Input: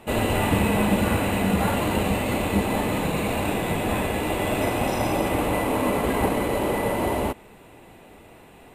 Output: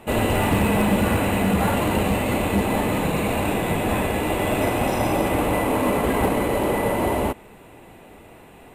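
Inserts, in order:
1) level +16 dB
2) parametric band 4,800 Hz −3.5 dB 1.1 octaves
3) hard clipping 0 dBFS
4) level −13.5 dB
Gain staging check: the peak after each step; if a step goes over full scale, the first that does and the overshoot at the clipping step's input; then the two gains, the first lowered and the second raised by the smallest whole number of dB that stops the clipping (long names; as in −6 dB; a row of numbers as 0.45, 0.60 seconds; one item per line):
+7.5, +7.5, 0.0, −13.5 dBFS
step 1, 7.5 dB
step 1 +8 dB, step 4 −5.5 dB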